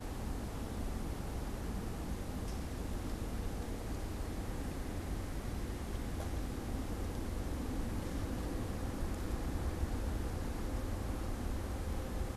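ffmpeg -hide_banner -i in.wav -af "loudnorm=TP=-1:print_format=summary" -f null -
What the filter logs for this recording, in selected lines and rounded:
Input Integrated:    -41.0 LUFS
Input True Peak:     -23.9 dBTP
Input LRA:             1.8 LU
Input Threshold:     -51.0 LUFS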